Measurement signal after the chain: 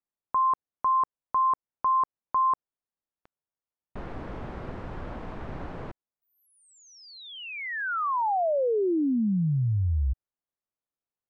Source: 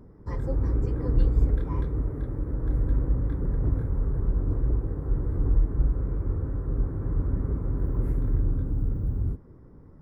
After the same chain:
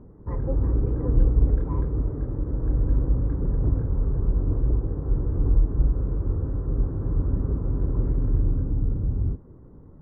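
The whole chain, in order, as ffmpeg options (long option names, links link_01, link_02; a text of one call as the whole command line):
ffmpeg -i in.wav -af "lowpass=1200,volume=2.5dB" out.wav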